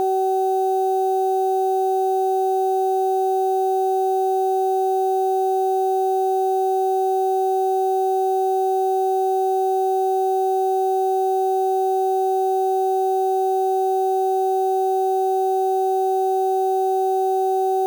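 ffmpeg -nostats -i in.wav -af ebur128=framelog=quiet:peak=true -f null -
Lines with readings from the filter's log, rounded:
Integrated loudness:
  I:         -20.2 LUFS
  Threshold: -30.2 LUFS
Loudness range:
  LRA:         0.0 LU
  Threshold: -40.2 LUFS
  LRA low:   -20.2 LUFS
  LRA high:  -20.2 LUFS
True peak:
  Peak:      -14.3 dBFS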